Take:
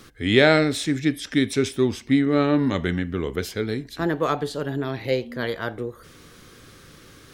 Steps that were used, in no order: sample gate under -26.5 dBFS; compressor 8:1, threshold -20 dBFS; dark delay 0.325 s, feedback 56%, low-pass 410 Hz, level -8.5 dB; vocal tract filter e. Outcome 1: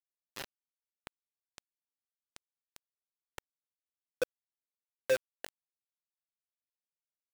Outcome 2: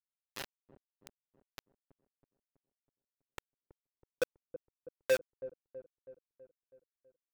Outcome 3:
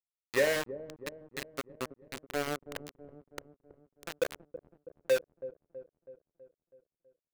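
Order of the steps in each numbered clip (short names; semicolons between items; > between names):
dark delay > compressor > vocal tract filter > sample gate; compressor > vocal tract filter > sample gate > dark delay; vocal tract filter > sample gate > compressor > dark delay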